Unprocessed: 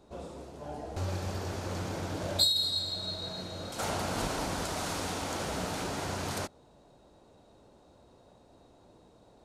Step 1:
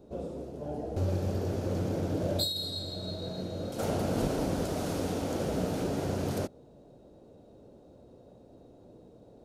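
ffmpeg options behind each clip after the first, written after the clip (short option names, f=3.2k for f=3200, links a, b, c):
-af "equalizer=f=125:t=o:w=1:g=4,equalizer=f=250:t=o:w=1:g=4,equalizer=f=500:t=o:w=1:g=6,equalizer=f=1k:t=o:w=1:g=-8,equalizer=f=2k:t=o:w=1:g=-6,equalizer=f=4k:t=o:w=1:g=-5,equalizer=f=8k:t=o:w=1:g=-7,volume=1.5dB"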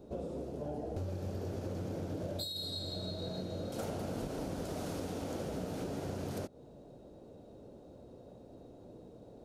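-af "acompressor=threshold=-37dB:ratio=6,volume=1dB"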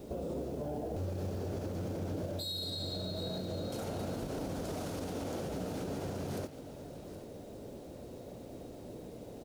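-af "alimiter=level_in=12dB:limit=-24dB:level=0:latency=1:release=66,volume=-12dB,acrusher=bits=10:mix=0:aa=0.000001,aecho=1:1:771:0.2,volume=6dB"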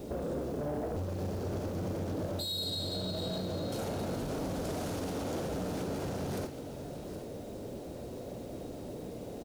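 -filter_complex "[0:a]asoftclip=type=tanh:threshold=-35dB,asplit=2[a][b];[b]adelay=48,volume=-11dB[c];[a][c]amix=inputs=2:normalize=0,volume=5dB"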